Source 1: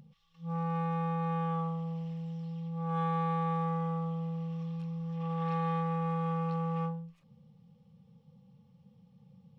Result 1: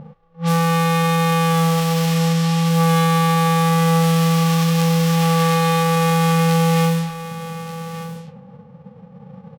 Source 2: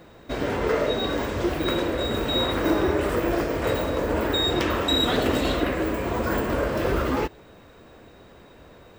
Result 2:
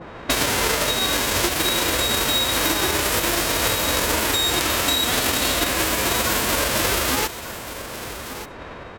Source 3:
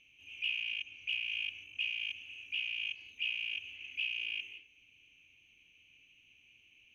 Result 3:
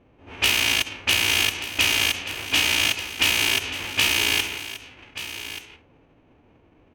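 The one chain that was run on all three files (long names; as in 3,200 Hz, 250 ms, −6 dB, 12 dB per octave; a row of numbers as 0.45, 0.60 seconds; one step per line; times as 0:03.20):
spectral envelope flattened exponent 0.3
downward compressor 16 to 1, threshold −33 dBFS
low-pass that shuts in the quiet parts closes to 570 Hz, open at −35 dBFS
single-tap delay 1,181 ms −13 dB
normalise the peak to −6 dBFS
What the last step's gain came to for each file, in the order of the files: +20.5, +16.0, +18.0 decibels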